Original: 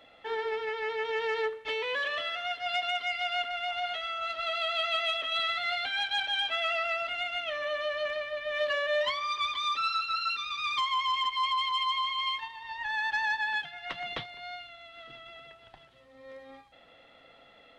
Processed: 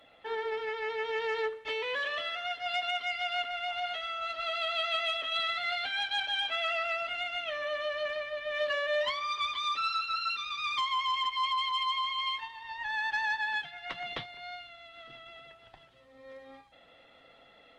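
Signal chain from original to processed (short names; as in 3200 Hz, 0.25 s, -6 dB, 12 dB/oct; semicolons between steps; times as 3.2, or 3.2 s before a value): gain -1.5 dB; Opus 32 kbps 48000 Hz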